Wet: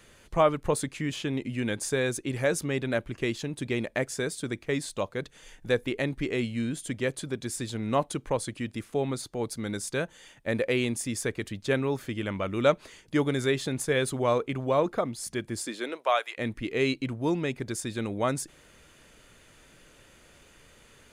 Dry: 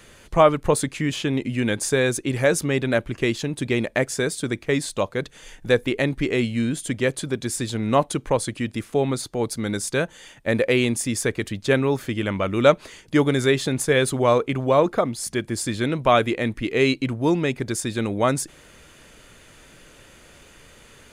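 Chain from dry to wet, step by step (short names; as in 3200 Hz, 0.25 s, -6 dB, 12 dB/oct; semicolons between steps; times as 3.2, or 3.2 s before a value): 15.62–16.37 HPF 210 Hz -> 860 Hz 24 dB/oct; gain -7 dB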